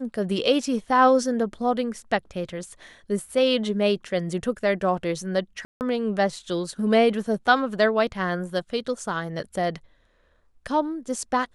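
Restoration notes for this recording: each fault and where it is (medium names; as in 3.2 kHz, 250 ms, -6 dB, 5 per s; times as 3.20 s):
5.65–5.81 s: dropout 159 ms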